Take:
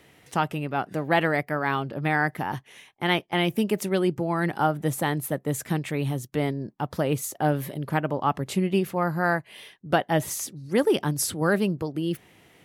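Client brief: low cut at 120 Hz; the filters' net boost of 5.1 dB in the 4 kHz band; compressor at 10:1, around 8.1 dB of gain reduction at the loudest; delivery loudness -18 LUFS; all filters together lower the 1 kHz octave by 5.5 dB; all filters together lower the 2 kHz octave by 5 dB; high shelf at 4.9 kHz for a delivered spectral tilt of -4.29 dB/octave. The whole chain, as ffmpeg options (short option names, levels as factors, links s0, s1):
-af "highpass=120,equalizer=f=1000:t=o:g=-7,equalizer=f=2000:t=o:g=-6.5,equalizer=f=4000:t=o:g=8,highshelf=f=4900:g=6,acompressor=threshold=0.0501:ratio=10,volume=5.01"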